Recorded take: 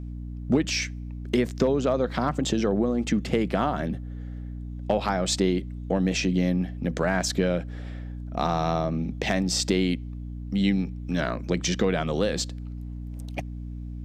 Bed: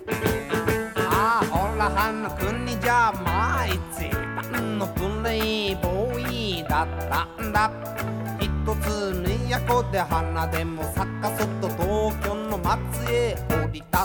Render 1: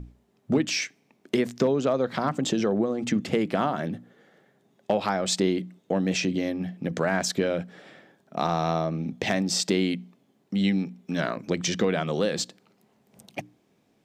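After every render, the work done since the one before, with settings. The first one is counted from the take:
mains-hum notches 60/120/180/240/300 Hz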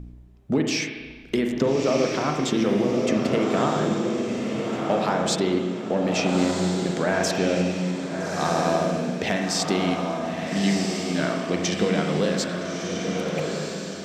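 feedback delay with all-pass diffusion 1,306 ms, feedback 42%, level −3.5 dB
spring reverb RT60 1.4 s, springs 33/45 ms, chirp 75 ms, DRR 3 dB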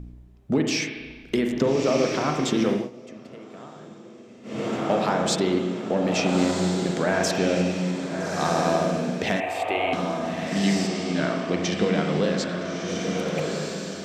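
0:02.69–0:04.64: duck −20 dB, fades 0.21 s
0:09.40–0:09.93: drawn EQ curve 110 Hz 0 dB, 160 Hz −27 dB, 320 Hz −7 dB, 730 Hz +6 dB, 1,400 Hz −8 dB, 2,500 Hz +8 dB, 5,300 Hz −25 dB, 11,000 Hz −5 dB
0:10.87–0:12.88: high-frequency loss of the air 64 metres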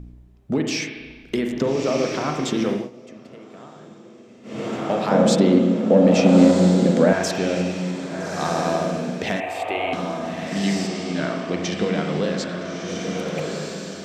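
0:05.11–0:07.13: hollow resonant body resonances 230/510 Hz, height 14 dB, ringing for 35 ms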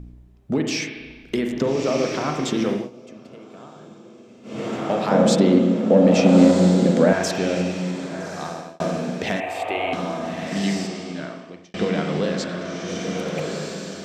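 0:02.86–0:04.57: notch filter 1,900 Hz, Q 7
0:08.06–0:08.80: fade out
0:10.56–0:11.74: fade out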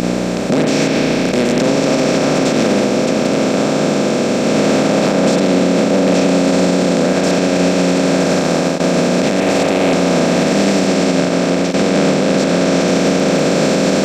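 compressor on every frequency bin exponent 0.2
brickwall limiter −4.5 dBFS, peak gain reduction 7.5 dB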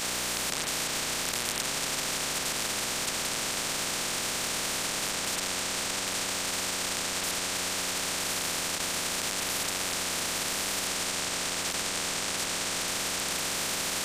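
brickwall limiter −11 dBFS, peak gain reduction 6.5 dB
every bin compressed towards the loudest bin 10 to 1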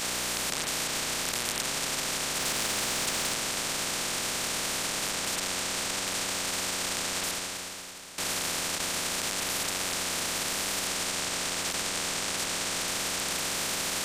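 0:02.39–0:03.34: converter with a step at zero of −38.5 dBFS
0:07.24–0:08.18: fade out quadratic, to −14.5 dB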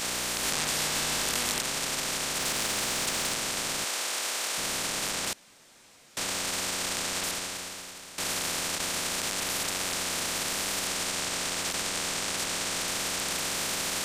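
0:00.41–0:01.59: double-tracking delay 20 ms −2 dB
0:03.84–0:04.58: high-pass filter 440 Hz
0:05.33–0:06.17: fill with room tone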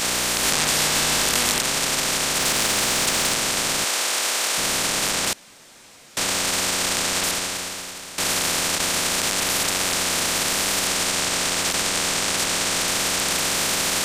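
level +8.5 dB
brickwall limiter −3 dBFS, peak gain reduction 1 dB

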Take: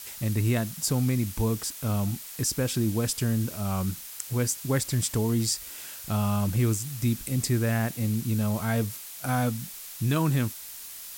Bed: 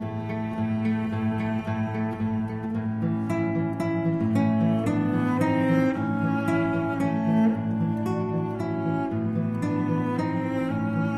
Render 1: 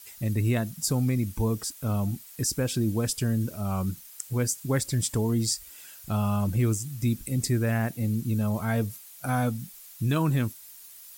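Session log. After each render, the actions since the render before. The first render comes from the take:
broadband denoise 10 dB, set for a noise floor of −42 dBFS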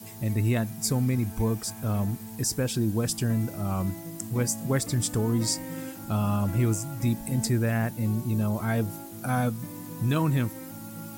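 mix in bed −15 dB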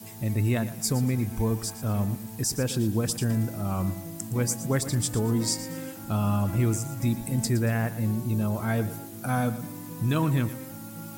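feedback echo at a low word length 116 ms, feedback 35%, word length 9 bits, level −13.5 dB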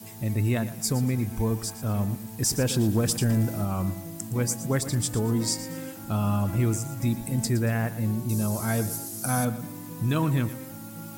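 0:02.42–0:03.65: leveller curve on the samples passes 1
0:08.29–0:09.45: flat-topped bell 7,500 Hz +12.5 dB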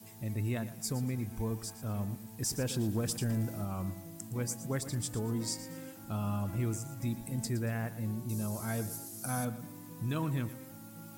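level −9 dB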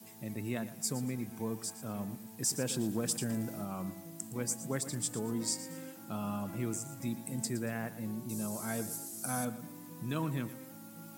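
high-pass filter 140 Hz 24 dB per octave
dynamic equaliser 8,000 Hz, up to +5 dB, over −56 dBFS, Q 2.4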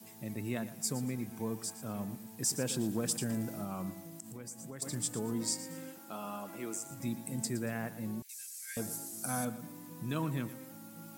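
0:04.06–0:04.82: downward compressor 4 to 1, threshold −43 dBFS
0:05.98–0:06.91: high-pass filter 330 Hz
0:08.22–0:08.77: Chebyshev high-pass with heavy ripple 1,600 Hz, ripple 3 dB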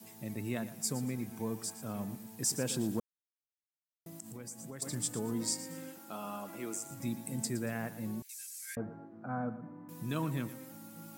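0:03.00–0:04.06: silence
0:08.75–0:09.89: low-pass filter 1,500 Hz 24 dB per octave

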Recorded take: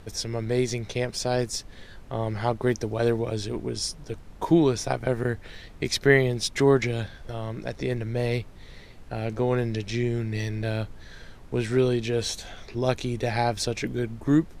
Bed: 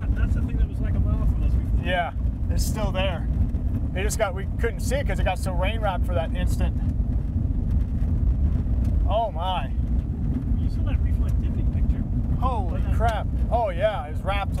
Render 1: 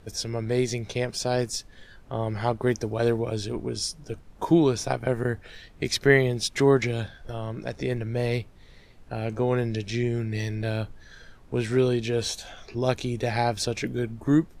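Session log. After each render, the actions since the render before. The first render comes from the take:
noise reduction from a noise print 6 dB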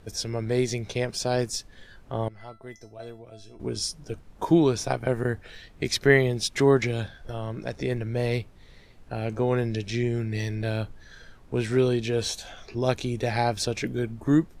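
0:02.28–0:03.60: tuned comb filter 670 Hz, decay 0.27 s, mix 90%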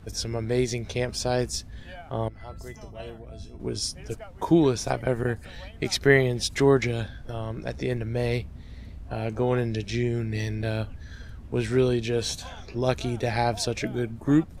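mix in bed −19.5 dB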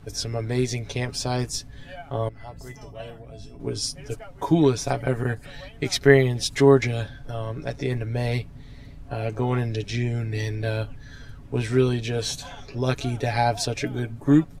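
comb filter 7.1 ms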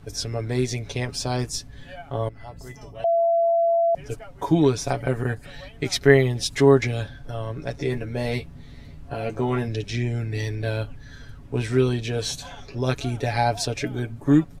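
0:03.04–0:03.95: beep over 674 Hz −16.5 dBFS
0:07.78–0:09.68: double-tracking delay 13 ms −6 dB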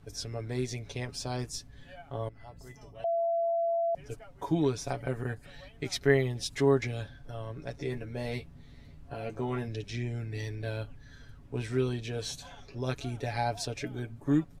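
level −9 dB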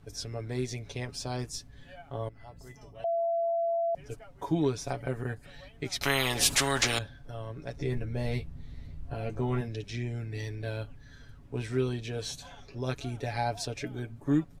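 0:06.01–0:06.99: every bin compressed towards the loudest bin 4 to 1
0:07.76–0:09.61: low-shelf EQ 120 Hz +12 dB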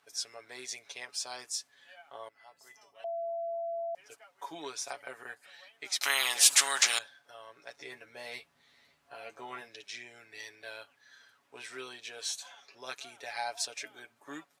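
dynamic equaliser 8,100 Hz, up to +6 dB, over −51 dBFS, Q 0.98
high-pass filter 950 Hz 12 dB per octave

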